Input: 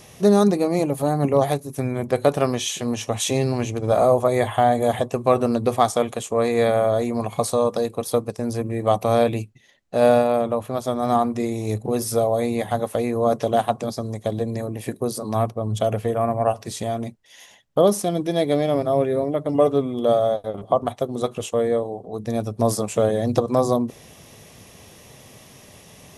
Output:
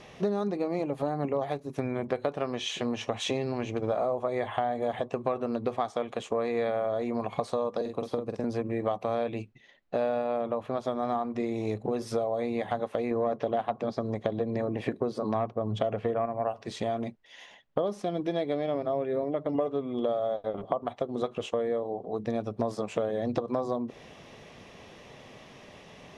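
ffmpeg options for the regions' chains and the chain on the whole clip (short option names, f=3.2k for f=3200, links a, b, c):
-filter_complex "[0:a]asettb=1/sr,asplit=3[a][b][c];[a]atrim=end=7.814[d];[b]atrim=start=7.81:end=8.44,asetpts=PTS-STARTPTS,afade=t=in:d=0.004:c=qsin,afade=t=out:st=0.626:d=0.004:c=qsin,acrossover=split=480|3800[e][f][g];[e]acompressor=threshold=-26dB:ratio=4[h];[f]acompressor=threshold=-36dB:ratio=4[i];[g]acompressor=threshold=-43dB:ratio=4[j];[h][i][j]amix=inputs=3:normalize=0,asplit=2[k][l];[l]adelay=46,volume=-6dB[m];[k][m]amix=inputs=2:normalize=0,atrim=end_sample=27783[n];[c]atrim=start=8.436[o];[d][n]acrossfade=d=0.004:c1=hsin:c2=qsin[p];[p][o]acrossfade=d=0.004:c1=qsin:c2=hsin,asettb=1/sr,asplit=3[q][r][s];[q]atrim=end=13.114[t];[r]atrim=start=13.11:end=16.26,asetpts=PTS-STARTPTS,afade=t=in:d=0.004:c=qsin,afade=t=out:st=3.146:d=0.004:c=qsin,lowpass=f=3.4k:p=1,acontrast=35[u];[s]atrim=start=16.256[v];[t][u]acrossfade=d=0.004:c1=hsin:c2=qsin[w];[w][v]acrossfade=d=0.004:c1=qsin:c2=hsin,lowpass=3.3k,equalizer=f=90:t=o:w=1.8:g=-8.5,acompressor=threshold=-26dB:ratio=6"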